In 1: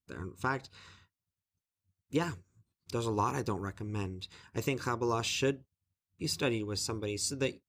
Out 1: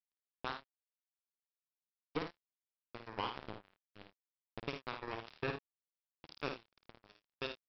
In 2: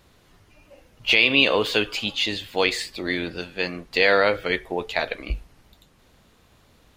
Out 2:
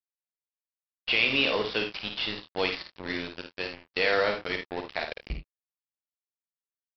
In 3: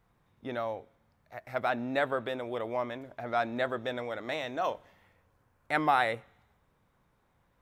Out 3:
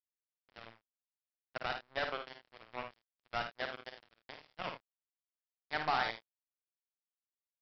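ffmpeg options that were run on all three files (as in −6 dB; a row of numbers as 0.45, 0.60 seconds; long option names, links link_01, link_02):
-af "aresample=11025,acrusher=bits=3:mix=0:aa=0.5,aresample=44100,aecho=1:1:53|79:0.501|0.237,volume=-8dB"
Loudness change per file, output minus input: −10.0, −6.5, −7.0 LU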